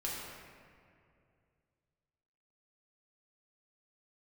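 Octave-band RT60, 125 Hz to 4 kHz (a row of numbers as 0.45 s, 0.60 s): 3.2 s, 2.6 s, 2.6 s, 2.2 s, 2.0 s, 1.3 s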